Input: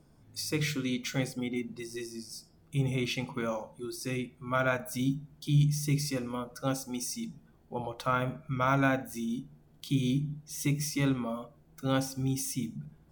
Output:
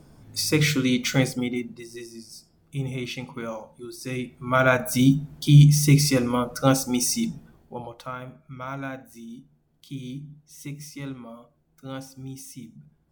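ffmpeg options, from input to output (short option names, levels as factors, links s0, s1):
-af "volume=12.6,afade=t=out:st=1.22:d=0.56:silence=0.316228,afade=t=in:st=3.97:d=1.07:silence=0.251189,afade=t=out:st=7.29:d=0.45:silence=0.281838,afade=t=out:st=7.74:d=0.42:silence=0.398107"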